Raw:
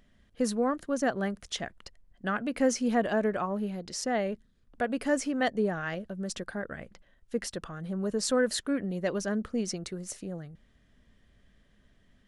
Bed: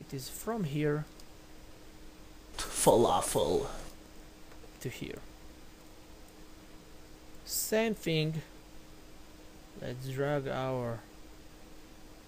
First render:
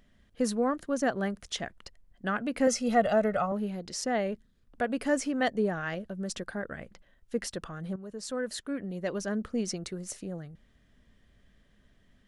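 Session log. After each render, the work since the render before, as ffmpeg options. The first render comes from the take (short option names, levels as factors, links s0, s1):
-filter_complex "[0:a]asettb=1/sr,asplit=3[s0][s1][s2];[s0]atrim=end=2.674[s3];[s1]atrim=start=2.67:end=3.52,asetpts=PTS-STARTPTS,afade=t=in:d=0.004:c=qsin,afade=t=out:st=0.846:d=0.004:c=qsin,aecho=1:1:1.5:0.85,atrim=end_sample=37485[s4];[s2]atrim=start=3.516[s5];[s3][s4]acrossfade=d=0.004:c1=hsin:c2=qsin[s6];[s6][s5]acrossfade=d=0.004:c1=qsin:c2=hsin,asplit=2[s7][s8];[s7]atrim=end=7.96,asetpts=PTS-STARTPTS,afade=t=out:st=7.956:d=0.004:c=hsin:silence=0.211349[s9];[s8]atrim=start=7.96,asetpts=PTS-STARTPTS,afade=t=in:d=1.65:silence=0.211349[s10];[s9][s10]concat=n=2:v=0:a=1"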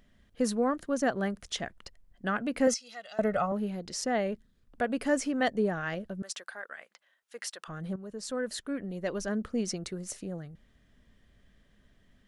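-filter_complex "[0:a]asettb=1/sr,asplit=3[s0][s1][s2];[s0]atrim=end=2.744[s3];[s1]atrim=start=2.74:end=3.19,asetpts=PTS-STARTPTS,afade=t=in:d=0.004:c=qsin,afade=t=out:st=0.446:d=0.004:c=qsin,bandpass=f=4800:t=q:w=1.7[s4];[s2]atrim=start=3.186[s5];[s3][s4]acrossfade=d=0.004:c1=hsin:c2=qsin[s6];[s6][s5]acrossfade=d=0.004:c1=qsin:c2=hsin,asettb=1/sr,asplit=3[s7][s8][s9];[s7]atrim=end=6.224[s10];[s8]atrim=start=6.22:end=7.68,asetpts=PTS-STARTPTS,afade=t=in:d=0.004:c=qsin,afade=t=out:st=1.456:d=0.004:c=qsin,highpass=930[s11];[s9]atrim=start=7.676[s12];[s10][s11]acrossfade=d=0.004:c1=hsin:c2=qsin[s13];[s13][s12]acrossfade=d=0.004:c1=qsin:c2=hsin,asettb=1/sr,asplit=3[s14][s15][s16];[s14]atrim=end=8.594[s17];[s15]atrim=start=8.59:end=9.29,asetpts=PTS-STARTPTS,afade=t=in:d=0.004:c=qsin,afade=t=out:st=0.696:d=0.004:c=qsin,asubboost=boost=11.5:cutoff=63[s18];[s16]atrim=start=9.286[s19];[s17][s18]acrossfade=d=0.004:c1=hsin:c2=qsin[s20];[s20][s19]acrossfade=d=0.004:c1=qsin:c2=hsin"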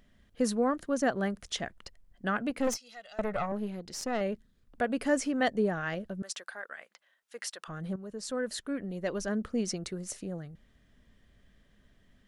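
-filter_complex "[0:a]asettb=1/sr,asplit=3[s0][s1][s2];[s0]atrim=end=2.504[s3];[s1]atrim=start=2.5:end=4.21,asetpts=PTS-STARTPTS,afade=t=in:d=0.004:c=qsin,afade=t=out:st=1.706:d=0.004:c=qsin,aeval=exprs='(tanh(14.1*val(0)+0.65)-tanh(0.65))/14.1':c=same[s4];[s2]atrim=start=4.206[s5];[s3][s4]acrossfade=d=0.004:c1=hsin:c2=qsin[s6];[s6][s5]acrossfade=d=0.004:c1=qsin:c2=hsin"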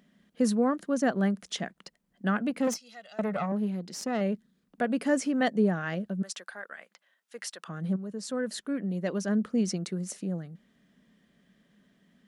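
-af "highpass=57,lowshelf=f=130:t=q:w=3:g=-11"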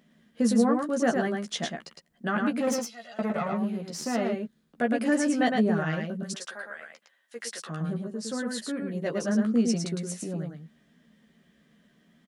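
-filter_complex "[0:a]asplit=2[s0][s1];[s1]adelay=13,volume=0.631[s2];[s0][s2]amix=inputs=2:normalize=0,aecho=1:1:109:0.631"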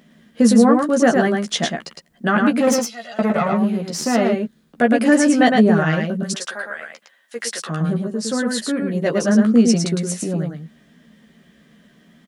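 -af "volume=3.35,alimiter=limit=0.708:level=0:latency=1"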